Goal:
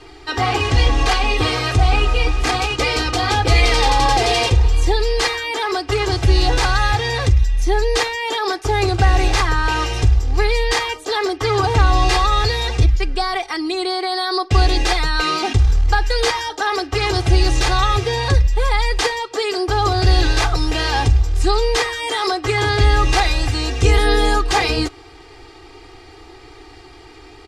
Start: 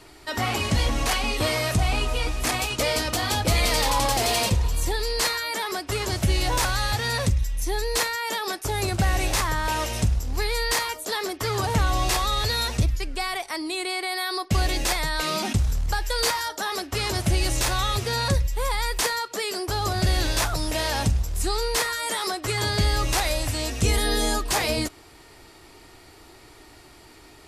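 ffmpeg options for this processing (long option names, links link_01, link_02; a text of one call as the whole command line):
ffmpeg -i in.wav -af "lowpass=4900,aecho=1:1:2.5:0.98,volume=4.5dB" out.wav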